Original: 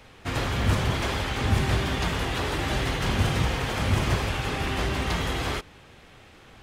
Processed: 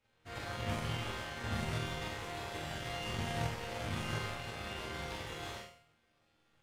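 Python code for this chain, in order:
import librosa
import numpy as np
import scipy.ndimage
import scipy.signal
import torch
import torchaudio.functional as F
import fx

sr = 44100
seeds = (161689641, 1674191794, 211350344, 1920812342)

y = fx.resonator_bank(x, sr, root=39, chord='sus4', decay_s=0.68)
y = fx.room_flutter(y, sr, wall_m=7.6, rt60_s=0.56)
y = fx.power_curve(y, sr, exponent=1.4)
y = y * librosa.db_to_amplitude(5.5)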